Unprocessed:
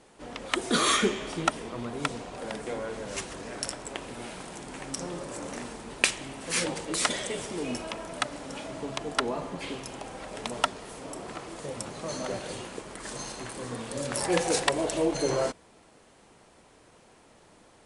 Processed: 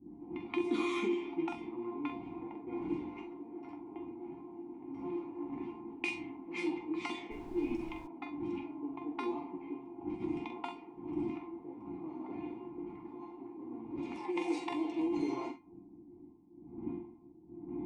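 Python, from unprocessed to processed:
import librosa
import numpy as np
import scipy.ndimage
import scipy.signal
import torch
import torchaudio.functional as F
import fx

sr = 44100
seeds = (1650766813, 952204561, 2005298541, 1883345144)

y = fx.dmg_wind(x, sr, seeds[0], corner_hz=180.0, level_db=-36.0)
y = fx.comb_fb(y, sr, f0_hz=350.0, decay_s=0.3, harmonics='all', damping=0.0, mix_pct=90)
y = fx.env_lowpass(y, sr, base_hz=330.0, full_db=-35.5)
y = fx.room_early_taps(y, sr, ms=(44, 66), db=(-8.0, -15.5))
y = fx.over_compress(y, sr, threshold_db=-37.0, ratio=-1.0)
y = fx.vowel_filter(y, sr, vowel='u')
y = fx.dmg_noise_colour(y, sr, seeds[1], colour='brown', level_db=-67.0, at=(7.3, 8.06), fade=0.02)
y = fx.low_shelf(y, sr, hz=170.0, db=-9.5, at=(14.03, 15.17))
y = F.gain(torch.from_numpy(y), 18.0).numpy()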